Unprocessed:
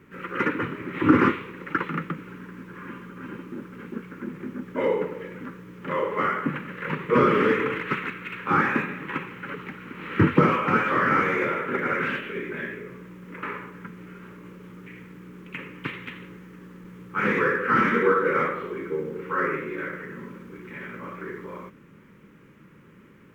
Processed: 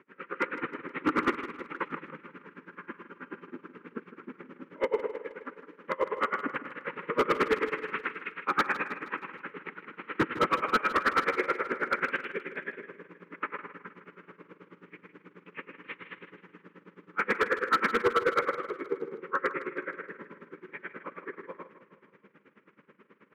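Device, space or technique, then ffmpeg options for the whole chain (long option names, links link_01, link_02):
helicopter radio: -filter_complex "[0:a]asettb=1/sr,asplit=3[link_01][link_02][link_03];[link_01]atrim=end=4.834[link_04];[link_02]atrim=start=4.83:end=5.88,asetpts=PTS-STARTPTS,afade=type=in:duration=0.004:curve=qsin,afade=type=out:start_time=1.046:duration=0.004:curve=qsin,highpass=frequency=220:width=0.5412,highpass=frequency=220:width=1.3066[link_05];[link_03]atrim=start=5.876[link_06];[link_04][link_05]acrossfade=duration=0.004:curve1=hsin:curve2=qsin[link_07];[link_07][link_06]acrossfade=duration=0.004:curve1=qsin:curve2=hsin,highpass=340,lowpass=2700,aeval=exprs='val(0)*pow(10,-31*(0.5-0.5*cos(2*PI*9.3*n/s))/20)':channel_layout=same,asoftclip=type=hard:threshold=-21.5dB,aecho=1:1:157|314|471|628|785:0.224|0.119|0.0629|0.0333|0.0177,volume=3dB"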